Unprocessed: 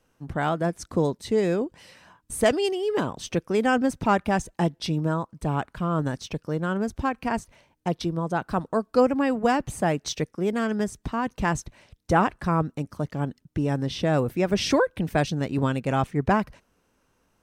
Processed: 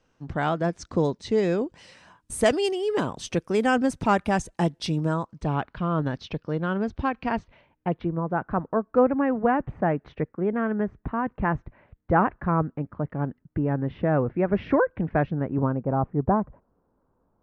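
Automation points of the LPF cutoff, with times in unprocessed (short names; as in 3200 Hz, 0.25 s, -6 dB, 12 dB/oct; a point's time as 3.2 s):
LPF 24 dB/oct
1.45 s 6600 Hz
2.34 s 11000 Hz
5.04 s 11000 Hz
5.65 s 4300 Hz
7.3 s 4300 Hz
8.18 s 1900 Hz
15.25 s 1900 Hz
15.84 s 1100 Hz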